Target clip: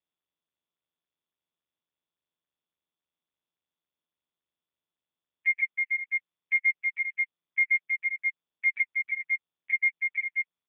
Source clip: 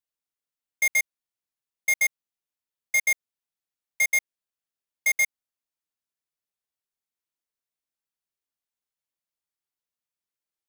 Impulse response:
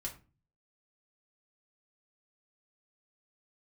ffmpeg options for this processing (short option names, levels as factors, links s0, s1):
-filter_complex "[0:a]areverse,adynamicequalizer=threshold=0.0112:dfrequency=1100:dqfactor=1.1:tfrequency=1100:tqfactor=1.1:attack=5:release=100:ratio=0.375:range=2:mode=boostabove:tftype=bell,asplit=2[s0][s1];[s1]adelay=24,volume=0.422[s2];[s0][s2]amix=inputs=2:normalize=0,asplit=2[s3][s4];[1:a]atrim=start_sample=2205[s5];[s4][s5]afir=irnorm=-1:irlink=0,volume=0.224[s6];[s3][s6]amix=inputs=2:normalize=0,acrossover=split=470[s7][s8];[s8]acompressor=threshold=0.0501:ratio=4[s9];[s7][s9]amix=inputs=2:normalize=0,aeval=exprs='val(0)+0.000355*(sin(2*PI*50*n/s)+sin(2*PI*2*50*n/s)/2+sin(2*PI*3*50*n/s)/3+sin(2*PI*4*50*n/s)/4+sin(2*PI*5*50*n/s)/5)':c=same,lowshelf=f=82:g=10,bandreject=f=60:t=h:w=6,bandreject=f=120:t=h:w=6,bandreject=f=180:t=h:w=6,bandreject=f=240:t=h:w=6,bandreject=f=300:t=h:w=6,bandreject=f=360:t=h:w=6,bandreject=f=420:t=h:w=6,bandreject=f=480:t=h:w=6,bandreject=f=540:t=h:w=6,aecho=1:1:320|528|663.2|751.1|808.2:0.631|0.398|0.251|0.158|0.1,afftfilt=real='re*gte(hypot(re,im),0.224)':imag='im*gte(hypot(re,im),0.224)':win_size=1024:overlap=0.75,volume=1.78" -ar 8000 -c:a libopencore_amrnb -b:a 5150